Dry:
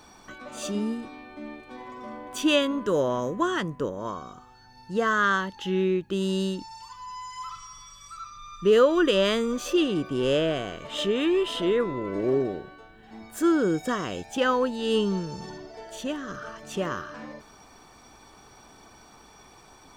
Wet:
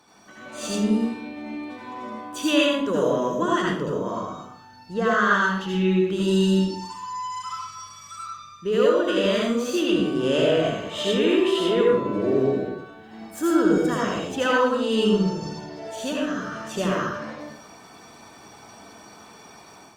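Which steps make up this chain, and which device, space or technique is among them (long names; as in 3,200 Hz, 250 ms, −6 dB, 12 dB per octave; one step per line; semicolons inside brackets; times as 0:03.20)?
0:04.94–0:05.34: high-shelf EQ 8,100 Hz −8 dB
far-field microphone of a smart speaker (convolution reverb RT60 0.60 s, pre-delay 70 ms, DRR −4 dB; high-pass filter 120 Hz 12 dB per octave; automatic gain control gain up to 7 dB; level −6 dB; Opus 48 kbit/s 48,000 Hz)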